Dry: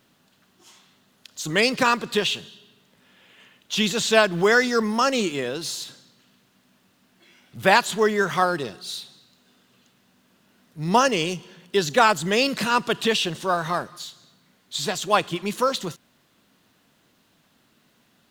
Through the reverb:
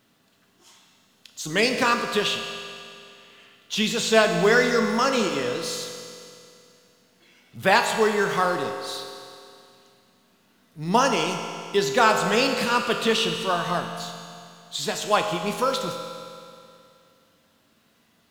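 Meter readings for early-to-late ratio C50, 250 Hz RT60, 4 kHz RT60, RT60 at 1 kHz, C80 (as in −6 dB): 5.5 dB, 2.5 s, 2.5 s, 2.5 s, 6.5 dB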